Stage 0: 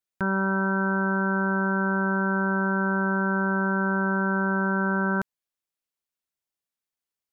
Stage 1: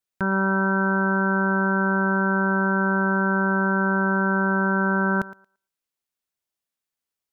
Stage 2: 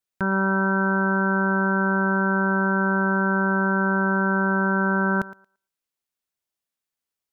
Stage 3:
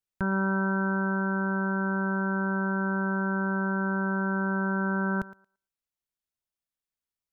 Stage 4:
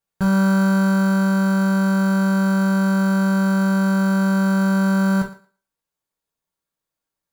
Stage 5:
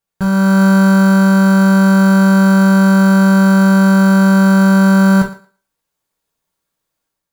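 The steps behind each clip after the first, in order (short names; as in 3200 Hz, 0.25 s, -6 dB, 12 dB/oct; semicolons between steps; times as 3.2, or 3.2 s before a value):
thinning echo 0.114 s, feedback 16%, high-pass 240 Hz, level -16 dB; gain +2 dB
nothing audible
low shelf 120 Hz +11.5 dB; vocal rider 2 s; gain -8 dB
in parallel at -6.5 dB: sample-and-hold 15×; on the sum: reverb, pre-delay 3 ms, DRR -2 dB; gain +1 dB
AGC gain up to 7 dB; gain +2.5 dB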